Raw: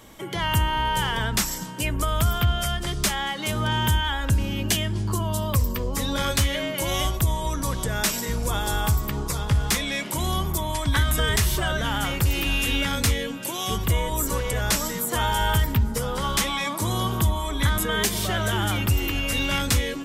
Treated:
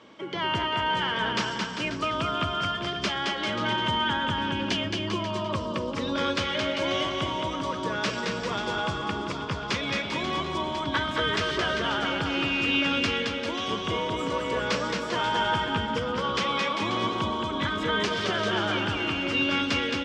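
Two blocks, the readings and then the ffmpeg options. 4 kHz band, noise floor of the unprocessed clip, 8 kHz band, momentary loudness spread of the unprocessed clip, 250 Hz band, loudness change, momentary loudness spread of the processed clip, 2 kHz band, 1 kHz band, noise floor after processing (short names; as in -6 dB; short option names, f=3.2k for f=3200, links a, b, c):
-0.5 dB, -31 dBFS, -15.5 dB, 4 LU, -0.5 dB, -3.0 dB, 5 LU, 0.0 dB, 0.0 dB, -33 dBFS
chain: -filter_complex "[0:a]highpass=230,equalizer=f=770:t=q:w=4:g=-6,equalizer=f=1.9k:t=q:w=4:g=-5,equalizer=f=3.8k:t=q:w=4:g=-5,lowpass=f=4.4k:w=0.5412,lowpass=f=4.4k:w=1.3066,asplit=2[a][b];[b]aecho=0:1:220|396|536.8|649.4|739.6:0.631|0.398|0.251|0.158|0.1[c];[a][c]amix=inputs=2:normalize=0"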